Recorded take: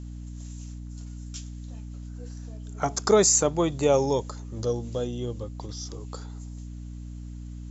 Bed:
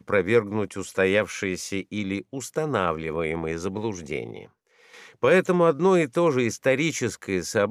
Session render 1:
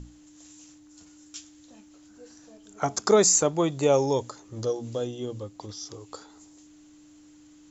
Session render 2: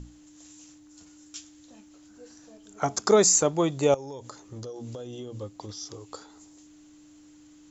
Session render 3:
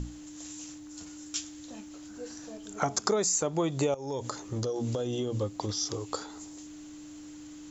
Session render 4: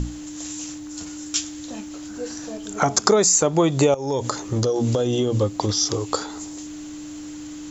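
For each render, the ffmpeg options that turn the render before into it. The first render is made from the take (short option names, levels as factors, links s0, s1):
-af "bandreject=f=60:t=h:w=6,bandreject=f=120:t=h:w=6,bandreject=f=180:t=h:w=6,bandreject=f=240:t=h:w=6"
-filter_complex "[0:a]asettb=1/sr,asplit=3[s0][s1][s2];[s0]atrim=end=3.944[s3];[s1]atrim=start=3.94:end=5.35,asetpts=PTS-STARTPTS,afade=t=in:d=0.004:c=qsin,afade=t=out:st=1.406:d=0.004:c=qsin,acompressor=threshold=0.02:ratio=20:attack=3.2:release=140:knee=1:detection=peak[s4];[s2]atrim=start=5.346[s5];[s3][s4]acrossfade=d=0.004:c1=hsin:c2=qsin[s6];[s6][s5]acrossfade=d=0.004:c1=qsin:c2=hsin"
-filter_complex "[0:a]asplit=2[s0][s1];[s1]alimiter=limit=0.106:level=0:latency=1:release=83,volume=1.33[s2];[s0][s2]amix=inputs=2:normalize=0,acompressor=threshold=0.0562:ratio=6"
-af "volume=3.35,alimiter=limit=0.794:level=0:latency=1"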